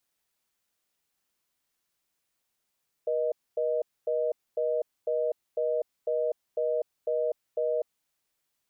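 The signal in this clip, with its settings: call progress tone reorder tone, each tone -27.5 dBFS 4.80 s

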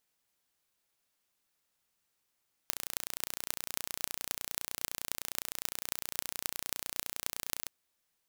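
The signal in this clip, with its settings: pulse train 29.8 per s, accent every 8, -3.5 dBFS 5.00 s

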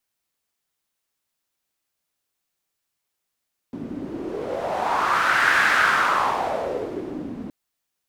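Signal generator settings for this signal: wind-like swept noise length 3.77 s, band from 260 Hz, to 1.6 kHz, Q 3.8, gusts 1, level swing 15 dB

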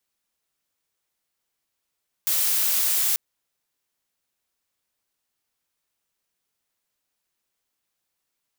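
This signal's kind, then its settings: noise blue, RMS -22 dBFS 0.89 s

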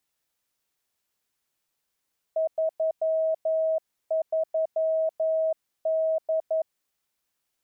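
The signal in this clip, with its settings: Morse "33D" 11 wpm 640 Hz -21.5 dBFS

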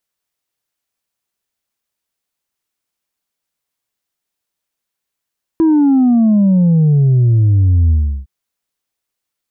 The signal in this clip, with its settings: sub drop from 330 Hz, over 2.66 s, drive 2 dB, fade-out 0.35 s, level -8 dB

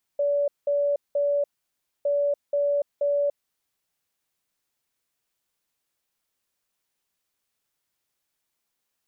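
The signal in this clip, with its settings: beep pattern sine 574 Hz, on 0.29 s, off 0.19 s, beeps 3, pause 0.61 s, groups 2, -20 dBFS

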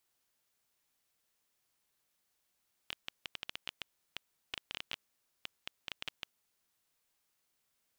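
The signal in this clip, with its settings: random clicks 8.8 per s -21 dBFS 3.45 s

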